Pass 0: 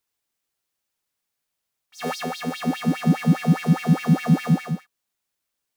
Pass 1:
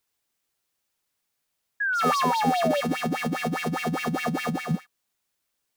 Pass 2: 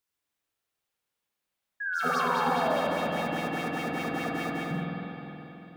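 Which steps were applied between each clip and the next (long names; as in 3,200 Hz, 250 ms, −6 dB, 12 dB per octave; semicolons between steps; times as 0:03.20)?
brickwall limiter −14 dBFS, peak gain reduction 6.5 dB; compressor whose output falls as the input rises −23 dBFS, ratio −0.5; sound drawn into the spectrogram fall, 0:01.80–0:02.81, 550–1,700 Hz −25 dBFS
spring reverb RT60 3.6 s, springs 46/52 ms, chirp 30 ms, DRR −3.5 dB; level −8 dB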